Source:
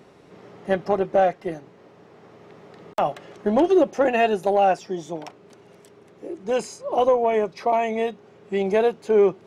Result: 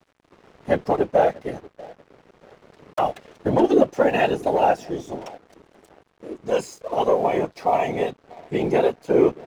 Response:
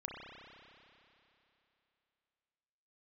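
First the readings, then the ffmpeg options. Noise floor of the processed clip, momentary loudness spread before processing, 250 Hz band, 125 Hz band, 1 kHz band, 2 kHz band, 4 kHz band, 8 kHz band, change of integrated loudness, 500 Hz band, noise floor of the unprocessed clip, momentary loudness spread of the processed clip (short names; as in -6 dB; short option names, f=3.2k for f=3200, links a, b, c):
-62 dBFS, 15 LU, +1.5 dB, +4.5 dB, 0.0 dB, 0.0 dB, +0.5 dB, n/a, +0.5 dB, 0.0 dB, -51 dBFS, 16 LU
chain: -filter_complex "[0:a]afftfilt=real='hypot(re,im)*cos(2*PI*random(0))':imag='hypot(re,im)*sin(2*PI*random(1))':win_size=512:overlap=0.75,asplit=2[a][b];[b]adelay=640,lowpass=f=910:p=1,volume=-19dB,asplit=2[c][d];[d]adelay=640,lowpass=f=910:p=1,volume=0.37,asplit=2[e][f];[f]adelay=640,lowpass=f=910:p=1,volume=0.37[g];[a][c][e][g]amix=inputs=4:normalize=0,aeval=exprs='sgn(val(0))*max(abs(val(0))-0.00224,0)':c=same,volume=6.5dB"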